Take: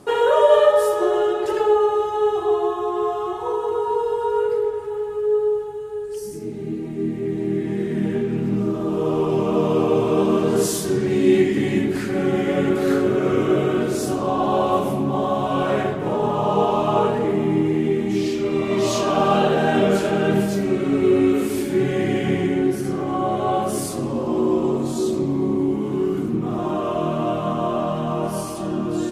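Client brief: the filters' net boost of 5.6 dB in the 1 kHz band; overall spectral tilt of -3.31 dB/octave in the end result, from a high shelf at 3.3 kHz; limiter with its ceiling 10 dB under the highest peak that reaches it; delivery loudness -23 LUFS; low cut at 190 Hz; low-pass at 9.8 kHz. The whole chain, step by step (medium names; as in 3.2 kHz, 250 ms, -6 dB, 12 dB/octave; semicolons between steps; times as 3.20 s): high-pass 190 Hz; low-pass 9.8 kHz; peaking EQ 1 kHz +8 dB; treble shelf 3.3 kHz -8.5 dB; trim -2 dB; peak limiter -12.5 dBFS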